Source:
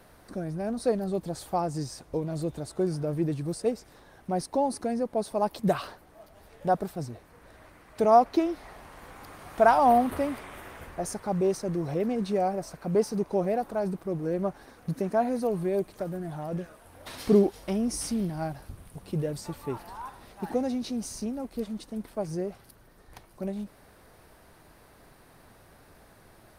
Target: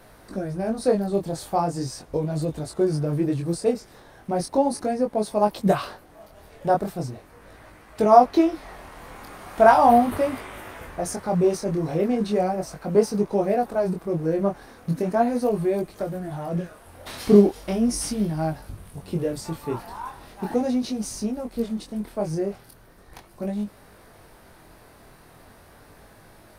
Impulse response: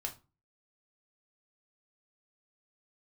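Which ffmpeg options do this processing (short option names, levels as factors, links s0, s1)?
-af "flanger=delay=19:depth=6.2:speed=0.38,volume=2.51"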